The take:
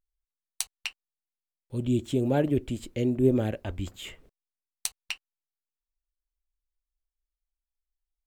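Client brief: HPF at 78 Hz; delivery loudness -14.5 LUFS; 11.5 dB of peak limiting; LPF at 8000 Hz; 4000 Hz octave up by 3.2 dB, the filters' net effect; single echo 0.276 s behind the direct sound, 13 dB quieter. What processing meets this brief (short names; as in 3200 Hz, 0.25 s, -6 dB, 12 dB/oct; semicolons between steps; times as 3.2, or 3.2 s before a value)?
HPF 78 Hz; LPF 8000 Hz; bell 4000 Hz +4.5 dB; limiter -19 dBFS; echo 0.276 s -13 dB; gain +17 dB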